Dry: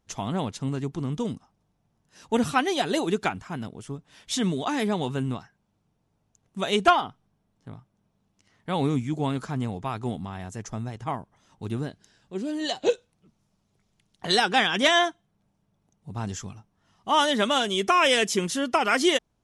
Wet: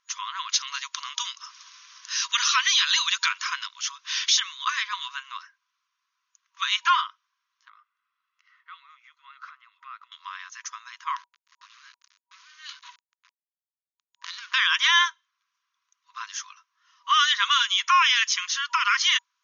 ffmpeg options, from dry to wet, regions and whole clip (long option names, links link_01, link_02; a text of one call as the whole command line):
ffmpeg -i in.wav -filter_complex "[0:a]asettb=1/sr,asplit=3[link_01][link_02][link_03];[link_01]atrim=end=0.494[link_04];[link_02]atrim=start=0.49:end=4.4,asetpts=PTS-STARTPTS,afade=type=in:duration=0.004:curve=qsin,afade=type=out:start_time=3.906:duration=0.004:curve=qsin,acompressor=mode=upward:threshold=-31dB:ratio=2.5:attack=3.2:release=140:knee=2.83:detection=peak,equalizer=frequency=5400:width_type=o:width=2.8:gain=12.5[link_05];[link_03]atrim=start=4.396[link_06];[link_04][link_05]acrossfade=duration=0.004:curve1=hsin:curve2=qsin[link_07];[link_07][link_06]acrossfade=duration=0.004:curve1=qsin:curve2=hsin,asettb=1/sr,asplit=3[link_08][link_09][link_10];[link_08]atrim=end=7.694[link_11];[link_09]atrim=start=7.69:end=10.12,asetpts=PTS-STARTPTS,afade=type=in:duration=0.004:curve=qsin,afade=type=out:start_time=2.426:duration=0.004:curve=qsin,lowpass=2400,acompressor=threshold=-39dB:ratio=5:attack=3.2:release=140:knee=1:detection=peak,aecho=1:1:1.5:0.49,atrim=end_sample=107163[link_12];[link_10]atrim=start=10.116[link_13];[link_11][link_12]acrossfade=duration=0.004:curve1=hsin:curve2=qsin[link_14];[link_14][link_13]acrossfade=duration=0.004:curve1=qsin:curve2=hsin,asettb=1/sr,asplit=3[link_15][link_16][link_17];[link_15]atrim=end=11.164[link_18];[link_16]atrim=start=11.16:end=14.54,asetpts=PTS-STARTPTS,afade=type=in:duration=0.004:curve=qsin,afade=type=out:start_time=3.376:duration=0.004:curve=qsin,equalizer=frequency=78:width_type=o:width=0.46:gain=-4,acompressor=threshold=-35dB:ratio=16:attack=3.2:release=140:knee=1:detection=peak,acrusher=bits=6:dc=4:mix=0:aa=0.000001[link_19];[link_17]atrim=start=14.536[link_20];[link_18][link_19]acrossfade=duration=0.004:curve1=hsin:curve2=qsin[link_21];[link_21][link_20]acrossfade=duration=0.004:curve1=qsin:curve2=hsin,afftfilt=real='re*between(b*sr/4096,960,6800)':imag='im*between(b*sr/4096,960,6800)':win_size=4096:overlap=0.75,alimiter=level_in=15.5dB:limit=-1dB:release=50:level=0:latency=1,volume=-9dB" out.wav